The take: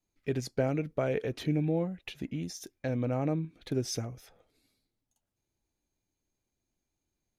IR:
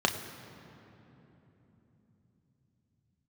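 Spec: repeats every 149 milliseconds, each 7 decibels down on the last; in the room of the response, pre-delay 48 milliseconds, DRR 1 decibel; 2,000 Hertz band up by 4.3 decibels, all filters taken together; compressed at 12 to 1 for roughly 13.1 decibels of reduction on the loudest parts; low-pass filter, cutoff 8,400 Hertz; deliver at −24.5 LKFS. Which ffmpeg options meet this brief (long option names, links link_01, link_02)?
-filter_complex "[0:a]lowpass=8400,equalizer=frequency=2000:width_type=o:gain=5.5,acompressor=threshold=-38dB:ratio=12,aecho=1:1:149|298|447|596|745:0.447|0.201|0.0905|0.0407|0.0183,asplit=2[link_01][link_02];[1:a]atrim=start_sample=2205,adelay=48[link_03];[link_02][link_03]afir=irnorm=-1:irlink=0,volume=-12.5dB[link_04];[link_01][link_04]amix=inputs=2:normalize=0,volume=15.5dB"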